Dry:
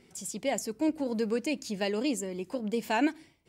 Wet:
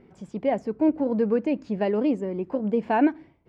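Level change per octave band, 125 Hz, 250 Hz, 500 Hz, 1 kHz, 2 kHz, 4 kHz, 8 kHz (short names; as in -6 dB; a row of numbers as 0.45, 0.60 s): +7.0 dB, +7.0 dB, +7.0 dB, +6.5 dB, -0.5 dB, n/a, under -20 dB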